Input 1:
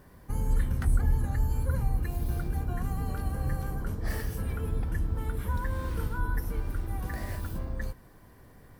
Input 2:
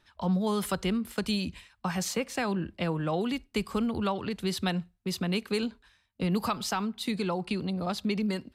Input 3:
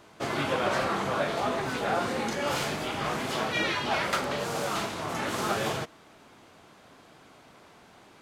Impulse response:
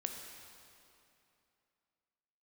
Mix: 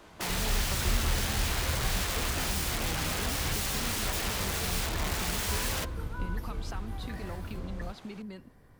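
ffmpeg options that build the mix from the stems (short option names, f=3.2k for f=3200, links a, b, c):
-filter_complex "[0:a]highshelf=f=12k:g=-10.5,volume=-5dB[a];[1:a]lowpass=f=3.5k:p=1,acompressor=threshold=-32dB:ratio=6,volume=-7dB[b];[2:a]aeval=exprs='(mod(26.6*val(0)+1,2)-1)/26.6':c=same,volume=0dB[c];[a][b][c]amix=inputs=3:normalize=0"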